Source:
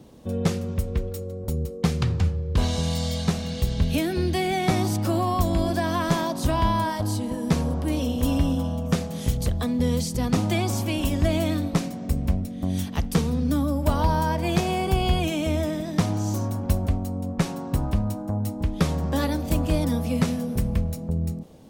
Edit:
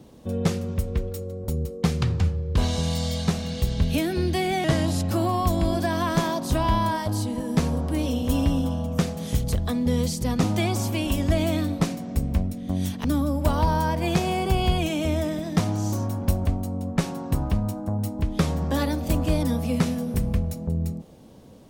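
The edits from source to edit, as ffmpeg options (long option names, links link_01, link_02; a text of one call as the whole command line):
ffmpeg -i in.wav -filter_complex "[0:a]asplit=4[link_01][link_02][link_03][link_04];[link_01]atrim=end=4.644[link_05];[link_02]atrim=start=4.64:end=5.04,asetpts=PTS-STARTPTS,asetrate=37926,aresample=44100[link_06];[link_03]atrim=start=5.036:end=12.982[link_07];[link_04]atrim=start=13.458[link_08];[link_05][link_06]acrossfade=duration=0.004:curve1=hsin:curve2=hsin[link_09];[link_09][link_07]acrossfade=duration=0.004:curve1=hsin:curve2=hsin[link_10];[link_10][link_08]acrossfade=duration=0.004:curve1=hsin:curve2=hsin" out.wav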